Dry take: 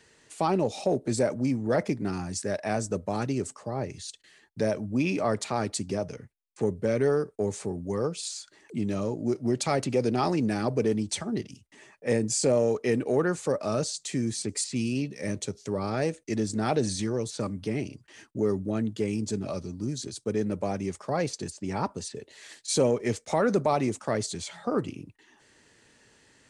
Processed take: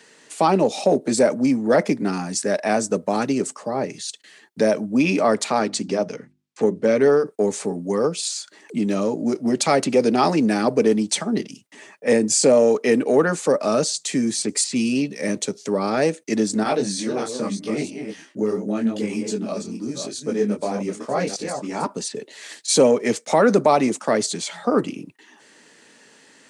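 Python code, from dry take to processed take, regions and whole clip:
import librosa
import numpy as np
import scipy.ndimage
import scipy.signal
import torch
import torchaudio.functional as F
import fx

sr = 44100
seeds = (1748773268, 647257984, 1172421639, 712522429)

y = fx.chain(x, sr, fx.lowpass(hz=6800.0, slope=12),
    fx.hum_notches(base_hz=50, count=7), at=(5.59, 7.26))
y = fx.chain(y, sr, fx.reverse_delay(ms=314, wet_db=-6.5),
    fx.detune_double(cents=29), at=(16.63, 21.86))
y = scipy.signal.sosfilt(scipy.signal.butter(4, 180.0, 'highpass', fs=sr, output='sos'), y)
y = fx.notch(y, sr, hz=360.0, q=12.0)
y = y * librosa.db_to_amplitude(9.0)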